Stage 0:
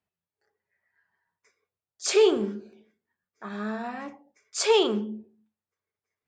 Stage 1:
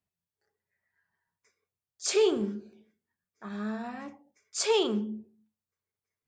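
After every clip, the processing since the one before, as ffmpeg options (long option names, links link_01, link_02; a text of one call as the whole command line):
ffmpeg -i in.wav -af "bass=frequency=250:gain=7,treble=frequency=4000:gain=4,volume=-5.5dB" out.wav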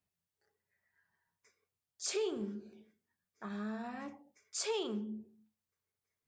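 ffmpeg -i in.wav -af "acompressor=threshold=-42dB:ratio=2" out.wav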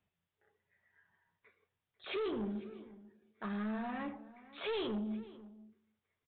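ffmpeg -i in.wav -filter_complex "[0:a]aresample=8000,asoftclip=type=tanh:threshold=-39.5dB,aresample=44100,asplit=2[link_01][link_02];[link_02]adelay=495.6,volume=-18dB,highshelf=frequency=4000:gain=-11.2[link_03];[link_01][link_03]amix=inputs=2:normalize=0,volume=6dB" out.wav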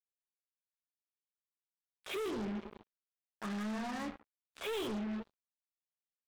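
ffmpeg -i in.wav -af "acrusher=bits=6:mix=0:aa=0.5" out.wav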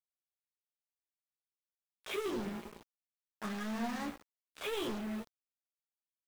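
ffmpeg -i in.wav -filter_complex "[0:a]flanger=delay=4:depth=2.5:regen=73:speed=0.54:shape=triangular,asplit=2[link_01][link_02];[link_02]adelay=17,volume=-8.5dB[link_03];[link_01][link_03]amix=inputs=2:normalize=0,acrusher=bits=9:mix=0:aa=0.000001,volume=5dB" out.wav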